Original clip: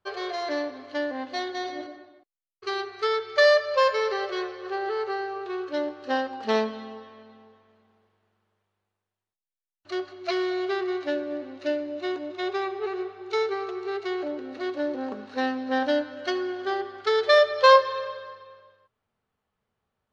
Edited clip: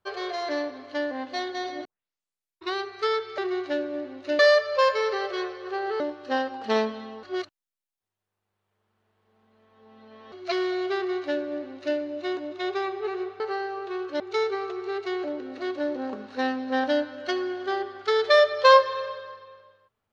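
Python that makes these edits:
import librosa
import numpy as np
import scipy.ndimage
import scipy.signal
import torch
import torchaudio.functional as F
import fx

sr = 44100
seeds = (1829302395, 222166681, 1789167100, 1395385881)

y = fx.edit(x, sr, fx.tape_start(start_s=1.85, length_s=0.9),
    fx.move(start_s=4.99, length_s=0.8, to_s=13.19),
    fx.reverse_span(start_s=7.02, length_s=3.09),
    fx.duplicate(start_s=10.75, length_s=1.01, to_s=3.38), tone=tone)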